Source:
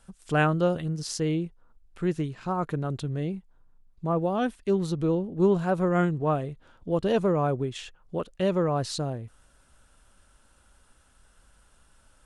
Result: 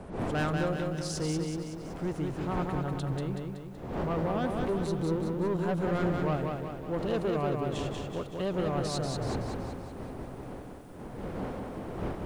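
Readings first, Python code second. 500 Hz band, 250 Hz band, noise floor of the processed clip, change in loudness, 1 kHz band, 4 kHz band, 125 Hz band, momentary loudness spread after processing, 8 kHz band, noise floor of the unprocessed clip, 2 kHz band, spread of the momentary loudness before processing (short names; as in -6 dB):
-4.5 dB, -3.5 dB, -43 dBFS, -5.0 dB, -4.0 dB, -2.0 dB, -3.0 dB, 12 LU, -2.0 dB, -61 dBFS, -4.0 dB, 11 LU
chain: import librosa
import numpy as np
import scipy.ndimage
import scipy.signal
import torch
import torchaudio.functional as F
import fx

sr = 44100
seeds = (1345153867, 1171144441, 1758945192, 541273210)

y = fx.dmg_wind(x, sr, seeds[0], corner_hz=470.0, level_db=-35.0)
y = 10.0 ** (-22.5 / 20.0) * np.tanh(y / 10.0 ** (-22.5 / 20.0))
y = fx.echo_crushed(y, sr, ms=188, feedback_pct=55, bits=10, wet_db=-3.5)
y = y * 10.0 ** (-3.5 / 20.0)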